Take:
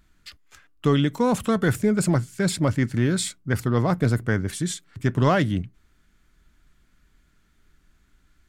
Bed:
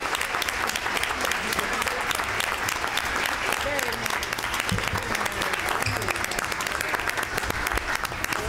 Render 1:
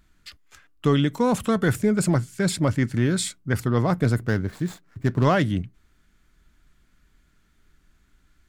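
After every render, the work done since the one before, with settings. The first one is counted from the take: 4.26–5.25 median filter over 15 samples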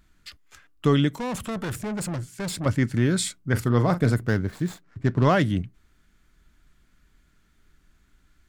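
1.09–2.66 tube stage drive 27 dB, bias 0.35; 3.4–4.14 doubler 41 ms -11.5 dB; 4.83–5.29 air absorption 53 m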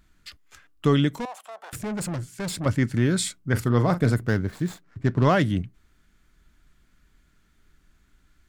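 1.25–1.73 ladder high-pass 660 Hz, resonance 65%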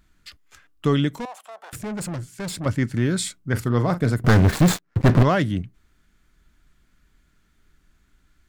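4.24–5.23 sample leveller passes 5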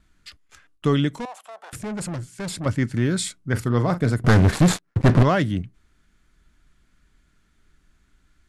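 gate with hold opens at -54 dBFS; steep low-pass 12000 Hz 72 dB/oct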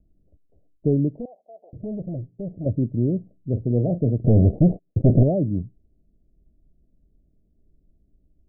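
steep low-pass 670 Hz 72 dB/oct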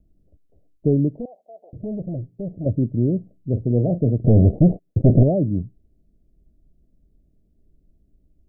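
gain +2 dB

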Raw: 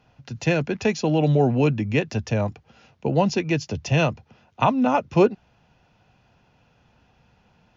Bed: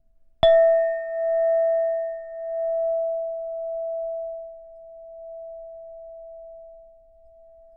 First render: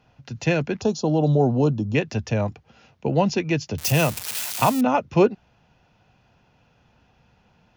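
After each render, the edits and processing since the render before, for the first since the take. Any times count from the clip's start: 0.81–1.95 Butterworth band-stop 2100 Hz, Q 0.9; 3.78–4.81 switching spikes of -16 dBFS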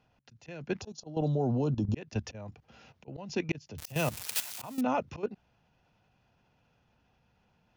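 auto swell 0.377 s; level quantiser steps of 14 dB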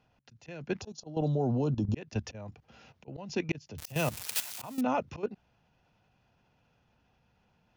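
nothing audible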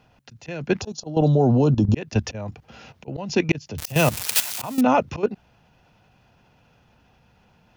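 gain +11.5 dB

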